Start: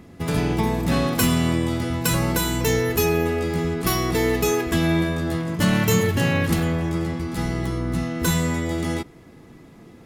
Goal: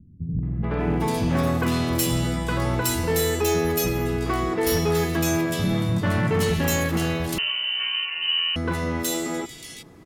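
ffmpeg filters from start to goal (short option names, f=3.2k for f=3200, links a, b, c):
-filter_complex "[0:a]acrossover=split=210|2400[a][b][c];[b]adelay=430[d];[c]adelay=800[e];[a][d][e]amix=inputs=3:normalize=0,volume=16dB,asoftclip=hard,volume=-16dB,asettb=1/sr,asplit=3[f][g][h];[f]atrim=end=7.384[i];[g]atrim=start=7.38:end=8.56,asetpts=PTS-STARTPTS,afade=t=in:d=0.004:c=qsin,afade=t=out:st=1.176:d=0.004:c=qsin,lowpass=f=2.6k:t=q:w=0.5098,lowpass=f=2.6k:t=q:w=0.6013,lowpass=f=2.6k:t=q:w=0.9,lowpass=f=2.6k:t=q:w=2.563,afreqshift=-3100[j];[h]atrim=start=8.556[k];[i][j]acrossfade=d=0.004:c1=hsin:c2=qsin[l];[l][k]acrossfade=d=0.004:c1=qsin:c2=hsin"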